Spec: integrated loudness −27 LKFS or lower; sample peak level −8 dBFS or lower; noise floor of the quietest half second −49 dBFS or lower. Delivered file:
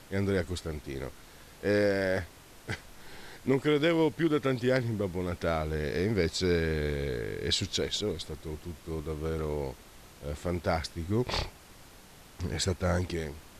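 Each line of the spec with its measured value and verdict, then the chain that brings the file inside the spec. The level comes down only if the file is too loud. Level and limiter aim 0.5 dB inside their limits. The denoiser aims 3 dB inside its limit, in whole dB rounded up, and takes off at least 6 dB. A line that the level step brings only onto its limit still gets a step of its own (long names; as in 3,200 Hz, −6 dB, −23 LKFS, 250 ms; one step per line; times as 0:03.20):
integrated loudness −31.0 LKFS: in spec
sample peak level −12.5 dBFS: in spec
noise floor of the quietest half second −53 dBFS: in spec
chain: no processing needed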